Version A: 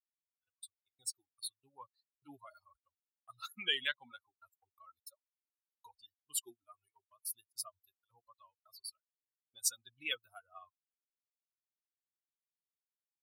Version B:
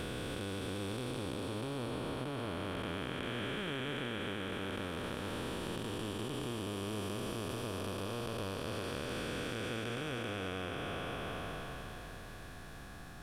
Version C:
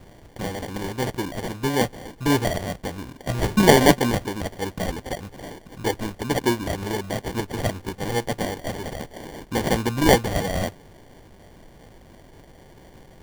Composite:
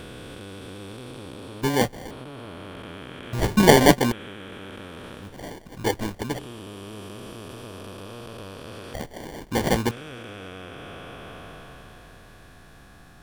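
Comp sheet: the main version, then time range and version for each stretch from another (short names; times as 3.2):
B
1.62–2.11 from C
3.33–4.12 from C
5.27–6.32 from C, crossfade 0.24 s
8.94–9.91 from C
not used: A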